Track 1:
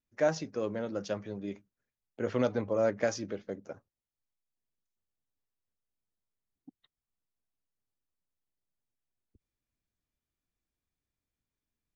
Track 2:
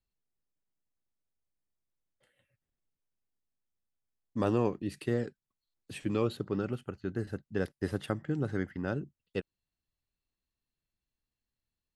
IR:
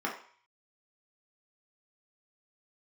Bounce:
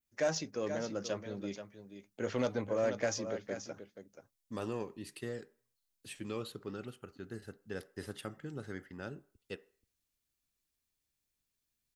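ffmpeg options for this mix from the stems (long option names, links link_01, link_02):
-filter_complex "[0:a]adynamicequalizer=threshold=0.00158:dfrequency=5100:dqfactor=0.87:tfrequency=5100:tqfactor=0.87:attack=5:release=100:ratio=0.375:range=3:mode=cutabove:tftype=bell,volume=-3dB,asplit=2[link_01][link_02];[link_02]volume=-10.5dB[link_03];[1:a]acontrast=77,adelay=150,volume=-17.5dB,asplit=2[link_04][link_05];[link_05]volume=-18dB[link_06];[2:a]atrim=start_sample=2205[link_07];[link_06][link_07]afir=irnorm=-1:irlink=0[link_08];[link_03]aecho=0:1:480:1[link_09];[link_01][link_04][link_08][link_09]amix=inputs=4:normalize=0,highshelf=frequency=2800:gain=12,asoftclip=type=tanh:threshold=-22.5dB"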